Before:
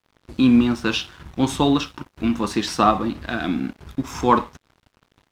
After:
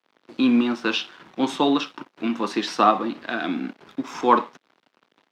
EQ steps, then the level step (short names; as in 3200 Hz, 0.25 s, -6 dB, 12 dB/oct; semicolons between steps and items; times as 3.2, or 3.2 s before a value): HPF 120 Hz 12 dB/oct; three-band isolator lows -24 dB, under 210 Hz, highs -13 dB, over 5400 Hz; 0.0 dB